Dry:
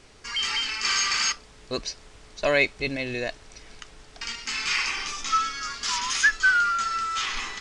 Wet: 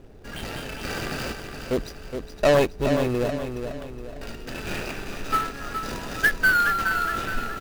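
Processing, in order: median filter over 41 samples; on a send: feedback echo 0.418 s, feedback 42%, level -7.5 dB; on the sum: gain +8.5 dB

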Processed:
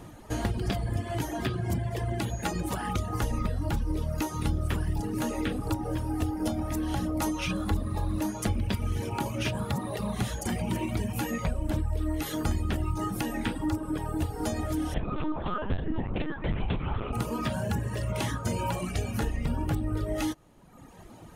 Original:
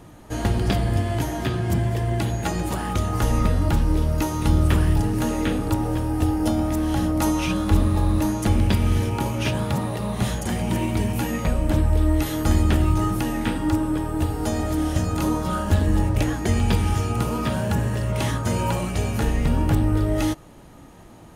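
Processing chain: reverb removal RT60 1.1 s; compressor 2.5:1, threshold -28 dBFS, peak gain reduction 11 dB; 14.94–17.13 LPC vocoder at 8 kHz pitch kept

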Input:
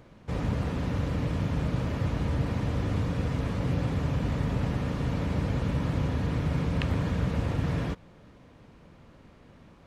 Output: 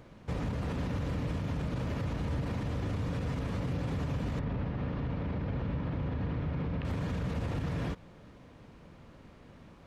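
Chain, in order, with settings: limiter -26 dBFS, peak gain reduction 11 dB; 4.39–6.85 air absorption 260 m

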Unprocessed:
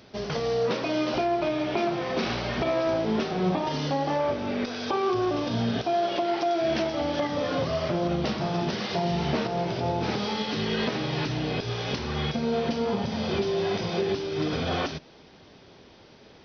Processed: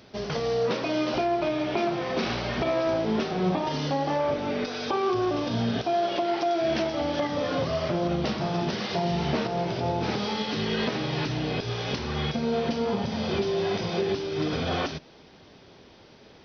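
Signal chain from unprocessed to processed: 4.31–4.88 comb 6.7 ms, depth 55%

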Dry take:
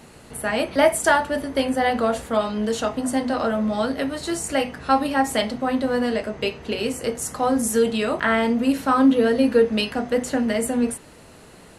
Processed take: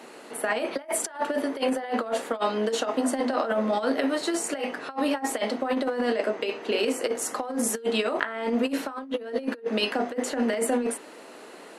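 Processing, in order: HPF 280 Hz 24 dB/oct; high shelf 4700 Hz -8 dB; negative-ratio compressor -26 dBFS, ratio -0.5

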